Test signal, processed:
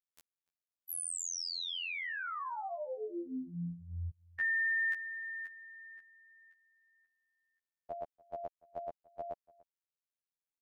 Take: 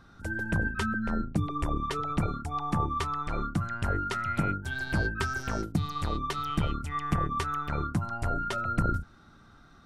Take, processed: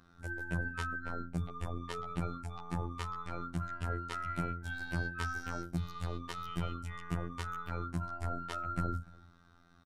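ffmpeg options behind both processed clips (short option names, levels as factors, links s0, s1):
-filter_complex "[0:a]afftfilt=real='hypot(re,im)*cos(PI*b)':imag='0':win_size=2048:overlap=0.75,asplit=2[s0][s1];[s1]adelay=291.5,volume=0.0708,highshelf=f=4000:g=-6.56[s2];[s0][s2]amix=inputs=2:normalize=0,volume=0.596"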